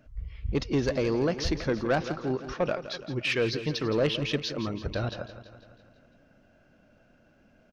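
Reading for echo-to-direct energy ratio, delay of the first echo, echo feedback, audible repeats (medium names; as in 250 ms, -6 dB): -10.5 dB, 167 ms, 58%, 5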